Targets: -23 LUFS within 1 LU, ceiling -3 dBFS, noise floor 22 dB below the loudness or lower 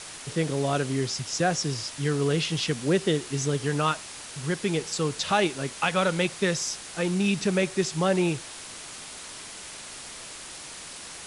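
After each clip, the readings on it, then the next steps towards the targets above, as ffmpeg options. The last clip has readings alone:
noise floor -41 dBFS; noise floor target -49 dBFS; loudness -26.5 LUFS; peak -10.0 dBFS; loudness target -23.0 LUFS
-> -af "afftdn=nr=8:nf=-41"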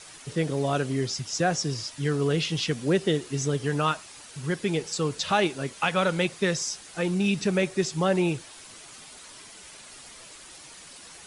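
noise floor -47 dBFS; noise floor target -49 dBFS
-> -af "afftdn=nr=6:nf=-47"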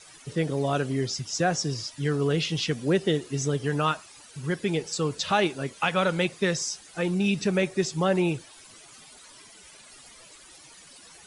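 noise floor -51 dBFS; loudness -27.0 LUFS; peak -10.0 dBFS; loudness target -23.0 LUFS
-> -af "volume=4dB"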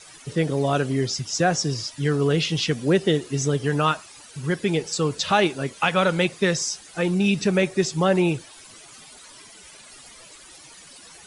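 loudness -23.0 LUFS; peak -6.0 dBFS; noise floor -47 dBFS

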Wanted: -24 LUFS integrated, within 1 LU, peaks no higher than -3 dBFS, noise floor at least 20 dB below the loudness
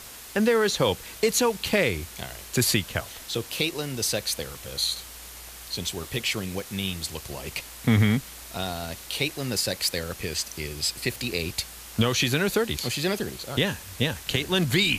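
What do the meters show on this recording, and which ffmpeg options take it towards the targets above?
noise floor -43 dBFS; noise floor target -47 dBFS; loudness -26.5 LUFS; peak -9.5 dBFS; loudness target -24.0 LUFS
-> -af "afftdn=nr=6:nf=-43"
-af "volume=2.5dB"

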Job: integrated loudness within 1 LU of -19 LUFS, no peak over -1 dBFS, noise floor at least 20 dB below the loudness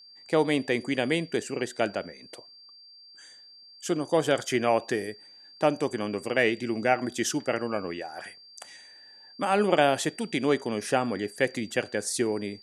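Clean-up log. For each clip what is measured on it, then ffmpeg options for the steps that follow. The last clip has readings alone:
steady tone 4700 Hz; tone level -49 dBFS; loudness -27.5 LUFS; peak -6.5 dBFS; loudness target -19.0 LUFS
-> -af "bandreject=f=4.7k:w=30"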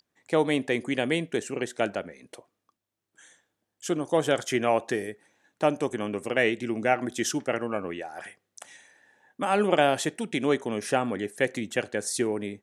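steady tone none; loudness -27.5 LUFS; peak -6.5 dBFS; loudness target -19.0 LUFS
-> -af "volume=8.5dB,alimiter=limit=-1dB:level=0:latency=1"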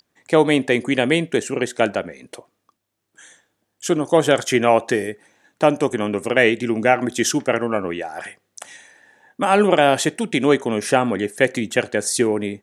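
loudness -19.0 LUFS; peak -1.0 dBFS; noise floor -74 dBFS

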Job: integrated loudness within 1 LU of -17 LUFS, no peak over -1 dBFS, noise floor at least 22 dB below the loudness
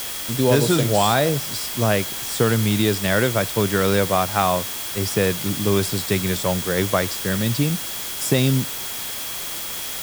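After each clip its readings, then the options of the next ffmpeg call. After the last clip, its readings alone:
steady tone 3300 Hz; tone level -38 dBFS; noise floor -30 dBFS; noise floor target -43 dBFS; loudness -20.5 LUFS; peak -4.0 dBFS; loudness target -17.0 LUFS
-> -af "bandreject=f=3.3k:w=30"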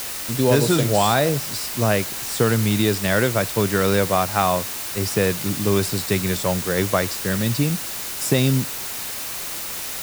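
steady tone none; noise floor -30 dBFS; noise floor target -43 dBFS
-> -af "afftdn=nr=13:nf=-30"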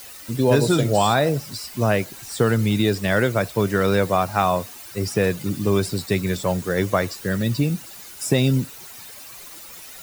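noise floor -40 dBFS; noise floor target -44 dBFS
-> -af "afftdn=nr=6:nf=-40"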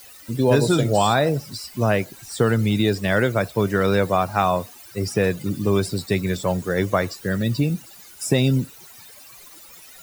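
noise floor -45 dBFS; loudness -21.5 LUFS; peak -4.5 dBFS; loudness target -17.0 LUFS
-> -af "volume=4.5dB,alimiter=limit=-1dB:level=0:latency=1"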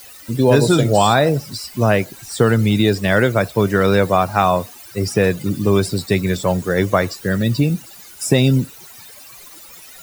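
loudness -17.0 LUFS; peak -1.0 dBFS; noise floor -40 dBFS

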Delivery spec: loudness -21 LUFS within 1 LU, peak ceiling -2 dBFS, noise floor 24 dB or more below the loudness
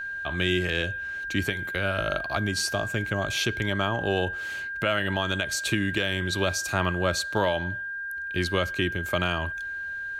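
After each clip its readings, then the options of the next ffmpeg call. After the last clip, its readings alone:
steady tone 1600 Hz; tone level -31 dBFS; loudness -27.0 LUFS; peak -12.0 dBFS; loudness target -21.0 LUFS
-> -af "bandreject=f=1.6k:w=30"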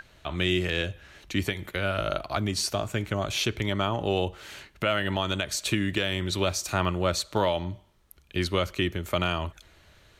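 steady tone none; loudness -28.0 LUFS; peak -13.0 dBFS; loudness target -21.0 LUFS
-> -af "volume=7dB"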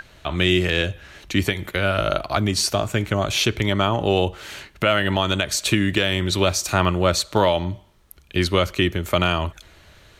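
loudness -21.0 LUFS; peak -6.0 dBFS; noise floor -51 dBFS

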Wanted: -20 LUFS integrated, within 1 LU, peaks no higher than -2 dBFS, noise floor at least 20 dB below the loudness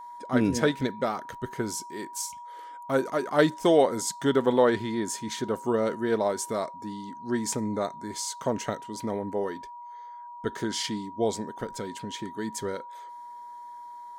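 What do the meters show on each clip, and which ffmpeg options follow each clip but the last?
steady tone 960 Hz; tone level -40 dBFS; loudness -28.5 LUFS; peak -8.0 dBFS; loudness target -20.0 LUFS
-> -af "bandreject=f=960:w=30"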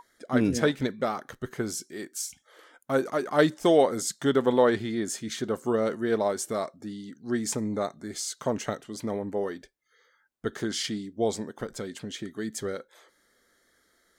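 steady tone none; loudness -28.5 LUFS; peak -8.0 dBFS; loudness target -20.0 LUFS
-> -af "volume=8.5dB,alimiter=limit=-2dB:level=0:latency=1"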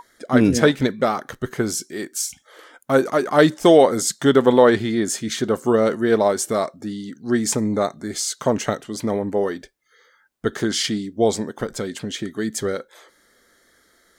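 loudness -20.0 LUFS; peak -2.0 dBFS; noise floor -60 dBFS

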